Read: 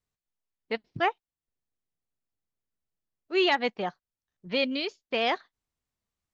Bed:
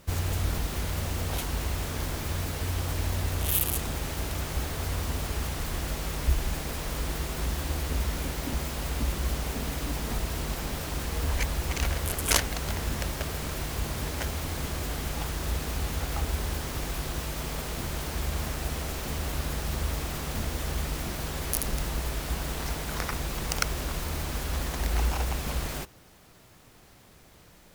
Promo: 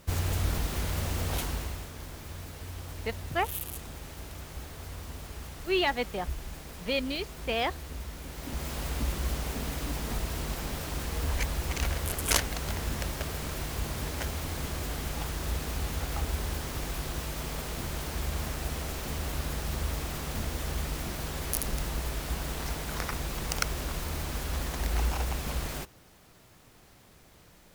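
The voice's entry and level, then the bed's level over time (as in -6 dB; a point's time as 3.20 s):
2.35 s, -3.0 dB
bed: 1.44 s -0.5 dB
1.92 s -10.5 dB
8.22 s -10.5 dB
8.72 s -2 dB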